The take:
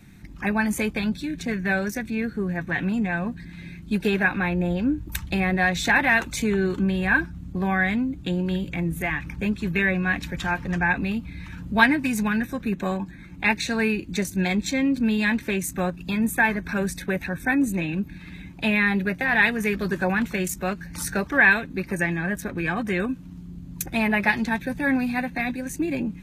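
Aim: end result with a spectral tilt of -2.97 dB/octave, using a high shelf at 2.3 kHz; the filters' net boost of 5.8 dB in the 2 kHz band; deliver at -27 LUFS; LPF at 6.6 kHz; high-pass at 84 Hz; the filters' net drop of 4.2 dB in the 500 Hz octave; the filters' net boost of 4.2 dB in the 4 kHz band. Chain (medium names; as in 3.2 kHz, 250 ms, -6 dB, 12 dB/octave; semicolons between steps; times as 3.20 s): high-pass 84 Hz; low-pass 6.6 kHz; peaking EQ 500 Hz -6 dB; peaking EQ 2 kHz +9 dB; treble shelf 2.3 kHz -6.5 dB; peaking EQ 4 kHz +8 dB; trim -6.5 dB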